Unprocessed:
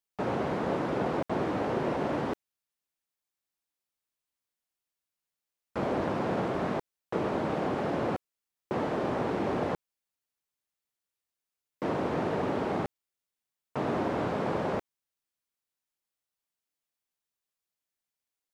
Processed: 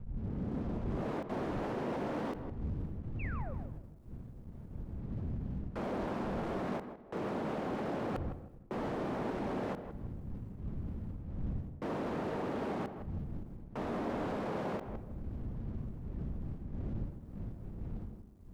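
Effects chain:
turntable start at the beginning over 1.22 s
wind on the microphone 120 Hz −38 dBFS
parametric band 220 Hz +4 dB 0.44 octaves
reversed playback
downward compressor 5 to 1, threshold −40 dBFS, peak gain reduction 20 dB
reversed playback
leveller curve on the samples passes 2
sound drawn into the spectrogram fall, 0:03.19–0:03.54, 480–2,800 Hz −44 dBFS
tape delay 161 ms, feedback 33%, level −7 dB, low-pass 1,100 Hz
on a send at −16 dB: convolution reverb RT60 1.1 s, pre-delay 33 ms
on the sum: every ending faded ahead of time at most 180 dB per second
level −2 dB

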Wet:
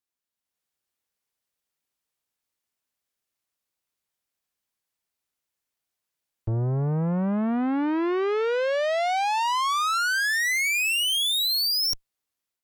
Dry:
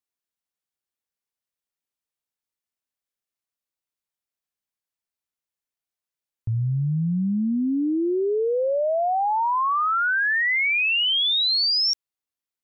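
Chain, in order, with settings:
automatic gain control gain up to 6 dB
tube saturation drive 27 dB, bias 0.7
level +3.5 dB

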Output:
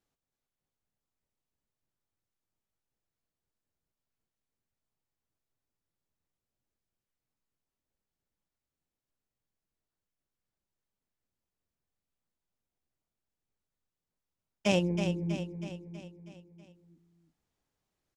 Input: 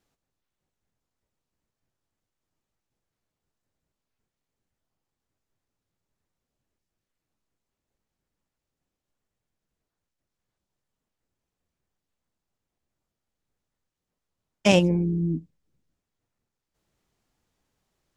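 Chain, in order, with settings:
repeating echo 322 ms, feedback 54%, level −8 dB
level −8.5 dB

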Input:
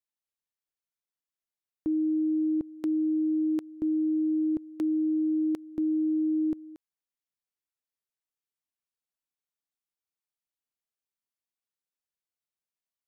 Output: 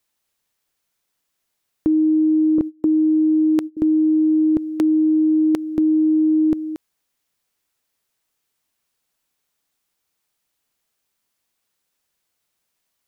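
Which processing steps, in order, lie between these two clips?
0:02.58–0:03.77: noise gate −36 dBFS, range −26 dB
in parallel at +1 dB: compressor whose output falls as the input rises −31 dBFS, ratio −0.5
on the sum: level +7 dB

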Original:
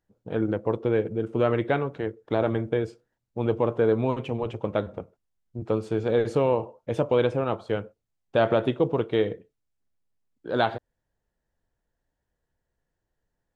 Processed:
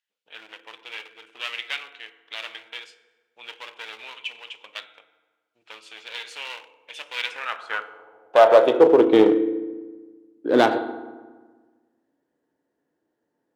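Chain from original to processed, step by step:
feedback delay network reverb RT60 1.4 s, low-frequency decay 1.25×, high-frequency decay 0.65×, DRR 9.5 dB
asymmetric clip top −26 dBFS
high-pass filter sweep 2,800 Hz → 290 Hz, 0:07.10–0:09.17
one half of a high-frequency compander decoder only
level +6 dB

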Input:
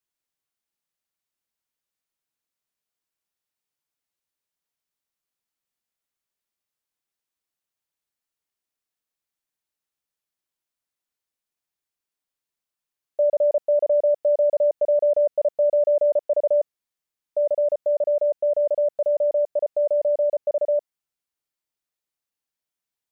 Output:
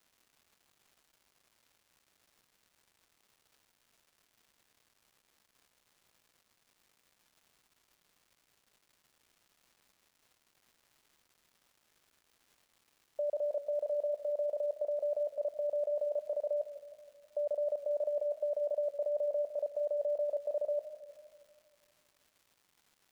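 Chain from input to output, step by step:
high-pass filter 380 Hz 6 dB per octave
output level in coarse steps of 19 dB
surface crackle 490 per second −62 dBFS
feedback echo with a swinging delay time 160 ms, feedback 58%, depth 69 cents, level −14.5 dB
level +5.5 dB

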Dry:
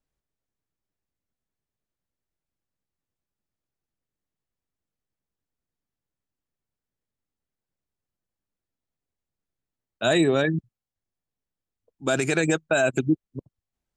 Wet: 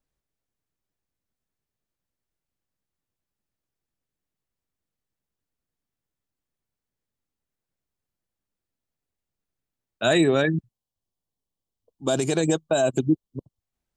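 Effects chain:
gain on a spectral selection 0:10.67–0:13.60, 1,200–2,800 Hz −10 dB
level +1 dB

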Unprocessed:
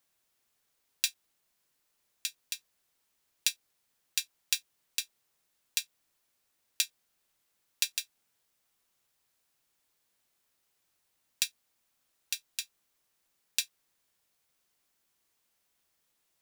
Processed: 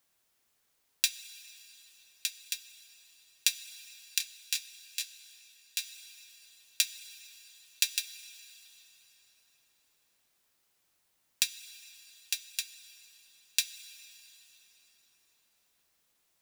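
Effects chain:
on a send at −12.5 dB: convolution reverb RT60 4.6 s, pre-delay 8 ms
0:04.18–0:05.79: on the sum: micro pitch shift up and down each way 32 cents
level +2 dB

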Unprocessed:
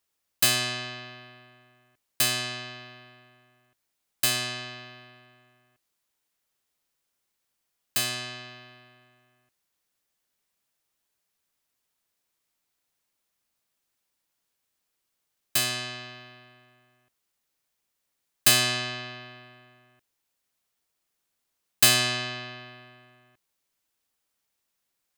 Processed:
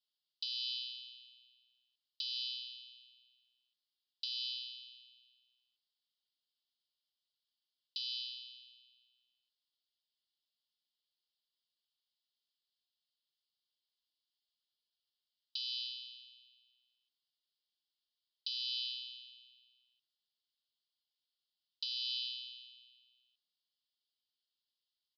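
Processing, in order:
Butterworth high-pass 2,900 Hz 96 dB per octave
downward compressor 12 to 1, threshold −29 dBFS, peak gain reduction 15.5 dB
downsampling to 11,025 Hz
level −2 dB

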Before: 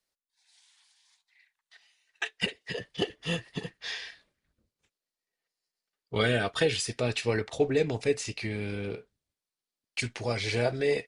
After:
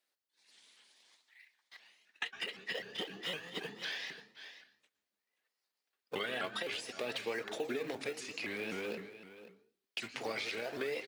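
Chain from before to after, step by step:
in parallel at −11 dB: sample-and-hold swept by an LFO 30×, swing 160% 0.51 Hz
on the sum: RIAA equalisation recording
brickwall limiter −16.5 dBFS, peak gain reduction 10.5 dB
single-tap delay 532 ms −16.5 dB
on a send at −15 dB: convolution reverb RT60 0.45 s, pre-delay 107 ms
on the sum: downward compressor 4 to 1, threshold −33 dBFS, peak gain reduction 8.5 dB
three-way crossover with the lows and the highs turned down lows −18 dB, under 170 Hz, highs −16 dB, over 3,500 Hz
pitch modulation by a square or saw wave saw up 3.9 Hz, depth 160 cents

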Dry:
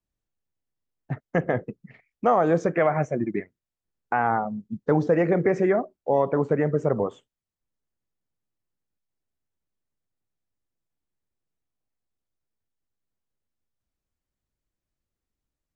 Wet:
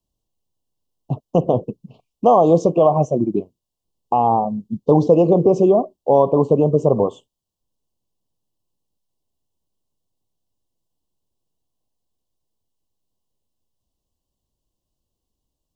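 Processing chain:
Chebyshev band-stop filter 1,100–2,800 Hz, order 4
level +8 dB

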